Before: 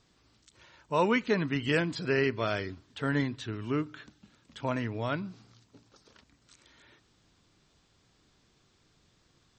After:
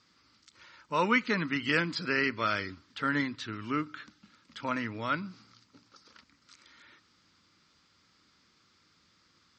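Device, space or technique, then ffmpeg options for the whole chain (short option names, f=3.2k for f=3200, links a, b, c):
car door speaker: -af "highpass=100,equalizer=f=130:t=q:w=4:g=-10,equalizer=f=410:t=q:w=4:g=-7,equalizer=f=700:t=q:w=4:g=-9,equalizer=f=1.3k:t=q:w=4:g=8,equalizer=f=2.1k:t=q:w=4:g=5,equalizer=f=4.8k:t=q:w=4:g=7,lowpass=f=7.3k:w=0.5412,lowpass=f=7.3k:w=1.3066"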